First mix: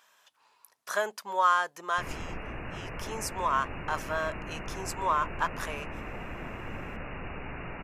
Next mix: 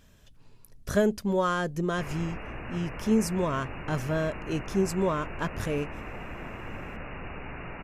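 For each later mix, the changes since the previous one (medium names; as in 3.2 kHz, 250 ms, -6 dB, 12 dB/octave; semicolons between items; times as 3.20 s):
speech: remove resonant high-pass 970 Hz, resonance Q 2.3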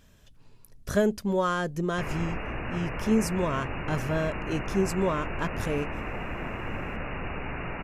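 background +5.0 dB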